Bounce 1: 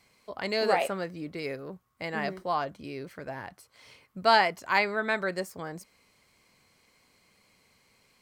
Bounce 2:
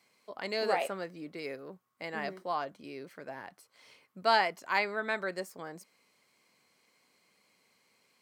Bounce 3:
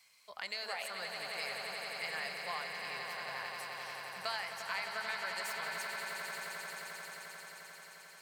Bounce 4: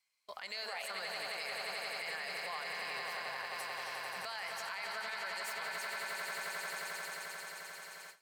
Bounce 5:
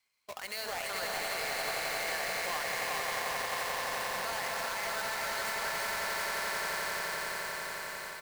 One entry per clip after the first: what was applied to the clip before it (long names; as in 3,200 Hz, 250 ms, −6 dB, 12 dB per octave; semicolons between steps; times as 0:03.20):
high-pass filter 200 Hz 12 dB per octave; level −4.5 dB
guitar amp tone stack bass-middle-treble 10-0-10; downward compressor 4 to 1, threshold −45 dBFS, peak gain reduction 14.5 dB; echo that builds up and dies away 88 ms, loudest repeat 8, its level −9 dB; level +7 dB
noise gate with hold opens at −43 dBFS; parametric band 150 Hz −5.5 dB 1.1 octaves; brickwall limiter −35 dBFS, peak gain reduction 11.5 dB; level +4 dB
each half-wave held at its own peak; bouncing-ball delay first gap 410 ms, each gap 0.8×, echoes 5